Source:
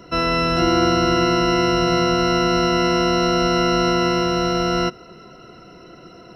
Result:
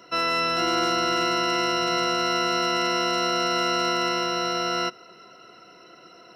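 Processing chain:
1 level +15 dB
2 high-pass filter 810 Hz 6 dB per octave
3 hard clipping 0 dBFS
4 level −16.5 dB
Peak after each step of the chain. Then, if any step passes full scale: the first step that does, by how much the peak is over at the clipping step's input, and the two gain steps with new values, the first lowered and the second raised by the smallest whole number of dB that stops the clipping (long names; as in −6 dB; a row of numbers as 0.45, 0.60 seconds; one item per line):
+10.0, +5.0, 0.0, −16.5 dBFS
step 1, 5.0 dB
step 1 +10 dB, step 4 −11.5 dB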